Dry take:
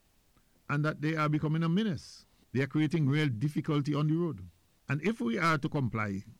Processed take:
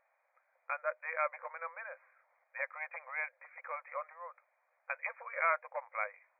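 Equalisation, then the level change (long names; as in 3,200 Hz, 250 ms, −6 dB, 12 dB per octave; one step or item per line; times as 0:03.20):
linear-phase brick-wall high-pass 500 Hz
linear-phase brick-wall low-pass 2,500 Hz
dynamic equaliser 1,400 Hz, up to −5 dB, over −46 dBFS, Q 2.7
+1.5 dB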